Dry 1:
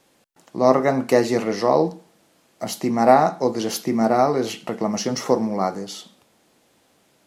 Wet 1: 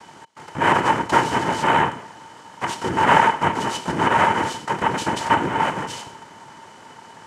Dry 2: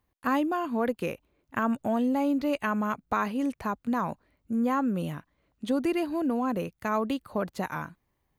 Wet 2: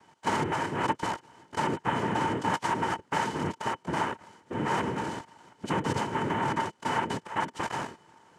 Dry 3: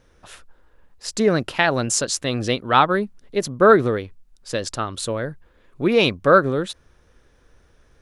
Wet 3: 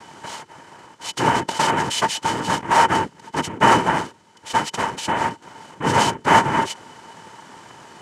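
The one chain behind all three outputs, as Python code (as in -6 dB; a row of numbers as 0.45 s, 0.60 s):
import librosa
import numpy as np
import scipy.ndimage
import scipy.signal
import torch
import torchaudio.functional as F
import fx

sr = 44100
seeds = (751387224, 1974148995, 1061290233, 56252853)

y = fx.bin_compress(x, sr, power=0.6)
y = fx.noise_vocoder(y, sr, seeds[0], bands=3)
y = fx.small_body(y, sr, hz=(910.0, 3000.0), ring_ms=45, db=16)
y = y * librosa.db_to_amplitude(-6.5)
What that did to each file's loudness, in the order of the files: +0.5 LU, -1.5 LU, 0.0 LU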